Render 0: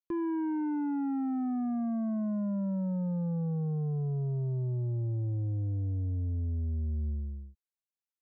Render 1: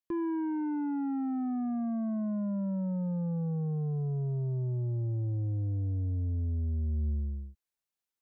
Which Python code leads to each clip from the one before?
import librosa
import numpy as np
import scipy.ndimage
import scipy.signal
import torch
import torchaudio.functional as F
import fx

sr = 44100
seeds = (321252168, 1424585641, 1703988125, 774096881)

y = fx.rider(x, sr, range_db=10, speed_s=0.5)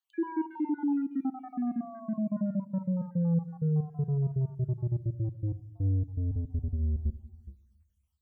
y = fx.spec_dropout(x, sr, seeds[0], share_pct=57)
y = fx.room_shoebox(y, sr, seeds[1], volume_m3=2200.0, walls='furnished', distance_m=0.59)
y = y * librosa.db_to_amplitude(4.0)